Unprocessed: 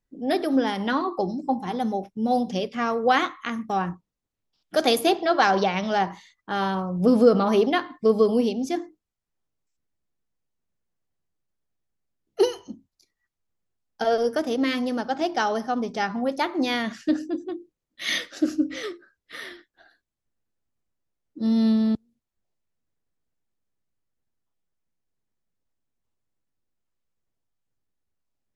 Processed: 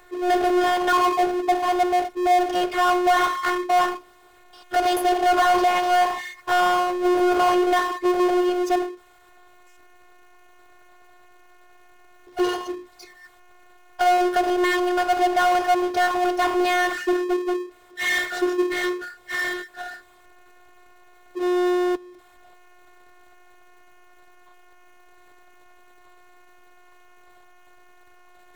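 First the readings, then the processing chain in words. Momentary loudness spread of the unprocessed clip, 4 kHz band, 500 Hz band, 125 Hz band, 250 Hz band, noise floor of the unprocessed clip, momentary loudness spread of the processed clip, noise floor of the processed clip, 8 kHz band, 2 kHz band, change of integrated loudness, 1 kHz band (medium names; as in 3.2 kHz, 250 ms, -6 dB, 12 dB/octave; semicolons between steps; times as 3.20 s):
11 LU, +1.5 dB, +2.0 dB, under -15 dB, -0.5 dB, -84 dBFS, 10 LU, -53 dBFS, +5.0 dB, +6.0 dB, +2.5 dB, +7.0 dB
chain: robot voice 359 Hz; peak limiter -15.5 dBFS, peak gain reduction 9.5 dB; three-band isolator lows -21 dB, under 440 Hz, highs -18 dB, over 2.2 kHz; power-law waveshaper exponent 0.5; trim +7 dB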